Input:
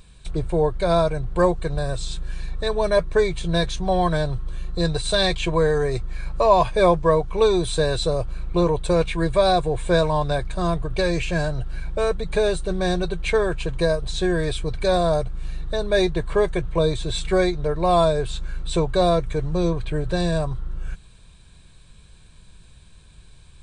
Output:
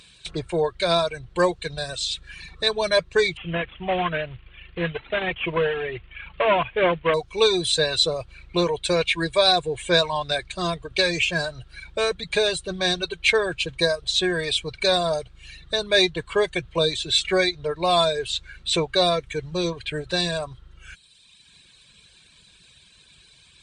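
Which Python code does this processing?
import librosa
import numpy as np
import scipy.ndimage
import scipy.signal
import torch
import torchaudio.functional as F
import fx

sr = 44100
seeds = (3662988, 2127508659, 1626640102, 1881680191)

y = fx.cvsd(x, sr, bps=16000, at=(3.37, 7.14))
y = fx.dereverb_blind(y, sr, rt60_s=1.4)
y = fx.weighting(y, sr, curve='D')
y = F.gain(torch.from_numpy(y), -1.0).numpy()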